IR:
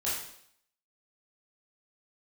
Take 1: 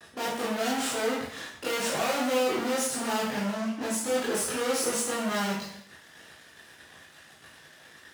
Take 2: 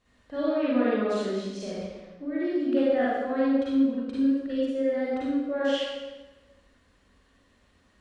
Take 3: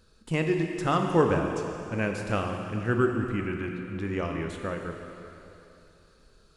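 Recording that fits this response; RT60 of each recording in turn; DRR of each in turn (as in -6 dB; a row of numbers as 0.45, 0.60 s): 1; 0.70, 1.2, 2.9 s; -9.0, -8.5, 3.0 dB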